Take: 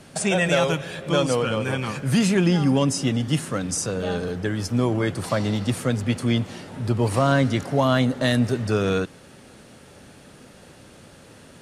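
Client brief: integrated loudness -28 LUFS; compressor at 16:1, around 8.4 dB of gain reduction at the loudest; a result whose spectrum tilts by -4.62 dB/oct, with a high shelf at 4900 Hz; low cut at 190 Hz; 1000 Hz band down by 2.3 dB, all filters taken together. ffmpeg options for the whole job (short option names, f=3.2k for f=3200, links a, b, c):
-af "highpass=190,equalizer=f=1k:t=o:g=-3,highshelf=f=4.9k:g=-3,acompressor=threshold=-25dB:ratio=16,volume=2.5dB"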